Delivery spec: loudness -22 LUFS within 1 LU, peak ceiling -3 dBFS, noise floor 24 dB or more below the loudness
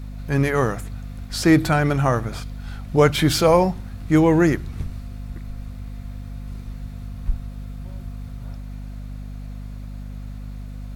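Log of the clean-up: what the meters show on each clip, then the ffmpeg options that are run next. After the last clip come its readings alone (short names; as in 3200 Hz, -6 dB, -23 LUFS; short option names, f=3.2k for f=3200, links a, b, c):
hum 50 Hz; harmonics up to 250 Hz; hum level -30 dBFS; loudness -20.0 LUFS; peak -4.0 dBFS; loudness target -22.0 LUFS
-> -af "bandreject=f=50:t=h:w=6,bandreject=f=100:t=h:w=6,bandreject=f=150:t=h:w=6,bandreject=f=200:t=h:w=6,bandreject=f=250:t=h:w=6"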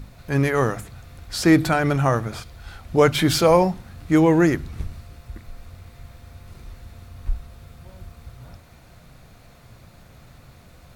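hum none; loudness -20.0 LUFS; peak -4.0 dBFS; loudness target -22.0 LUFS
-> -af "volume=-2dB"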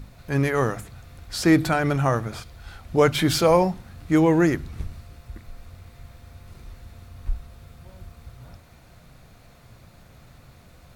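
loudness -22.0 LUFS; peak -6.0 dBFS; noise floor -51 dBFS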